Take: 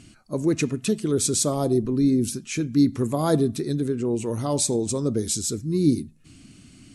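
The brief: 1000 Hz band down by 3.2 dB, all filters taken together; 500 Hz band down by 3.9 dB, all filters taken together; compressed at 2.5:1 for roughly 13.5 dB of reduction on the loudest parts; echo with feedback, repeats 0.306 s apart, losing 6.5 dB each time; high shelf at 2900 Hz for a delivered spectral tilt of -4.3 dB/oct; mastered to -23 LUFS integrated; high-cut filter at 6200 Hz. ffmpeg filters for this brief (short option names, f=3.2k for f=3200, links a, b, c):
-af "lowpass=6.2k,equalizer=f=500:t=o:g=-5,equalizer=f=1k:t=o:g=-3.5,highshelf=f=2.9k:g=9,acompressor=threshold=-36dB:ratio=2.5,aecho=1:1:306|612|918|1224|1530|1836:0.473|0.222|0.105|0.0491|0.0231|0.0109,volume=10.5dB"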